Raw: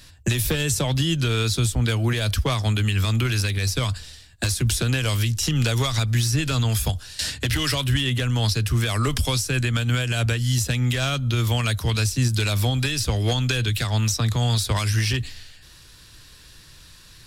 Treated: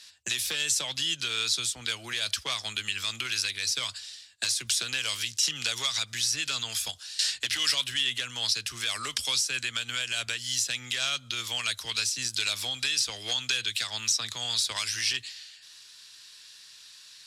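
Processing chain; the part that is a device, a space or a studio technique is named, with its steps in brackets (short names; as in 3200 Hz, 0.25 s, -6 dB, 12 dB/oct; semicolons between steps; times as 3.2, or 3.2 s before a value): piezo pickup straight into a mixer (LPF 5300 Hz 12 dB/oct; differentiator); gain +7 dB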